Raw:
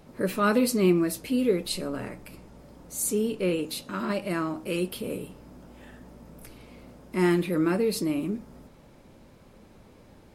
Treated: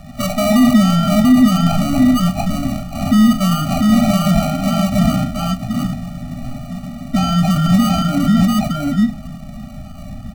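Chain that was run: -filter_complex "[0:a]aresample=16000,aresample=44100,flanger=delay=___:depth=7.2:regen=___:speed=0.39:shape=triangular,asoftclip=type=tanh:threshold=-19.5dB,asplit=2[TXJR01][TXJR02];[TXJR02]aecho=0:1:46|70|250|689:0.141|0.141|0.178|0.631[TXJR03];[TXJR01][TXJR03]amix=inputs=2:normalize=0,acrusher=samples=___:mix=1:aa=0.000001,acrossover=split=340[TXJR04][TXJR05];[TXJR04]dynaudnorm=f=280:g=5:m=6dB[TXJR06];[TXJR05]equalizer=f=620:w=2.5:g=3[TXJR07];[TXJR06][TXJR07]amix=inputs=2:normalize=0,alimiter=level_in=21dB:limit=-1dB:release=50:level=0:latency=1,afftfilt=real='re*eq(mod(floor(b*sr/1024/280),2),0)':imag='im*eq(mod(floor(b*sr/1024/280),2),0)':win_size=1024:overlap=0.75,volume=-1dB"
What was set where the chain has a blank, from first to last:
0.5, 39, 26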